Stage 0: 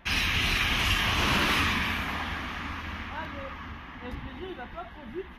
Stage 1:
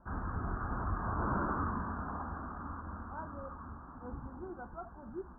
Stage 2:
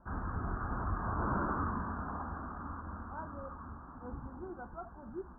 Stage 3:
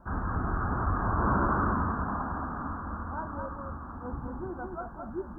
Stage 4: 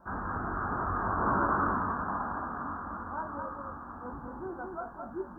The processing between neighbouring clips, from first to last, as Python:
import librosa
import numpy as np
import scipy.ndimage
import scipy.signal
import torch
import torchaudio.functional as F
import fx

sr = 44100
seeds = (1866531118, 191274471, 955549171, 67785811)

y1 = scipy.signal.sosfilt(scipy.signal.butter(16, 1500.0, 'lowpass', fs=sr, output='sos'), x)
y1 = F.gain(torch.from_numpy(y1), -5.5).numpy()
y2 = y1
y3 = y2 + 10.0 ** (-5.0 / 20.0) * np.pad(y2, (int(217 * sr / 1000.0), 0))[:len(y2)]
y3 = F.gain(torch.from_numpy(y3), 6.5).numpy()
y4 = fx.low_shelf(y3, sr, hz=180.0, db=-12.0)
y4 = fx.doubler(y4, sr, ms=21.0, db=-7.0)